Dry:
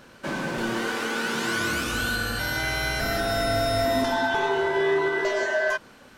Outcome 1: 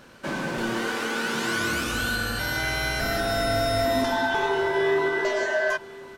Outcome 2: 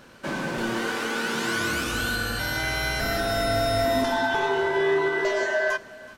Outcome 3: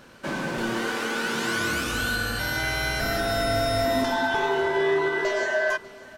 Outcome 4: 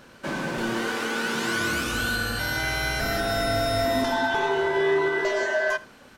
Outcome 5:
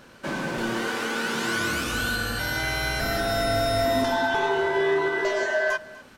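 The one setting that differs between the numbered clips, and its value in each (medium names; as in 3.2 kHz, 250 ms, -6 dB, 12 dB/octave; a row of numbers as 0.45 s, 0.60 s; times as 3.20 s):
delay, time: 1057 ms, 373 ms, 596 ms, 79 ms, 246 ms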